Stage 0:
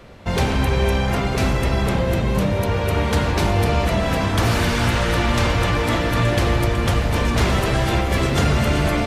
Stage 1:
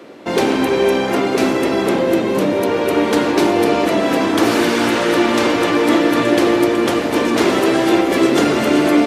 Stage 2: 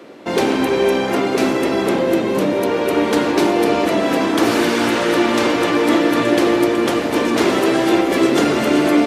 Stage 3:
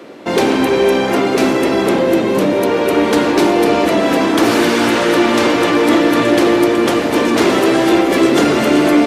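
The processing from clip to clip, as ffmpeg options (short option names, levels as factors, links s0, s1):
-af "highpass=f=310:t=q:w=3.5,volume=1.41"
-af "bandreject=f=50:t=h:w=6,bandreject=f=100:t=h:w=6,volume=0.891"
-af "acontrast=27,volume=0.891"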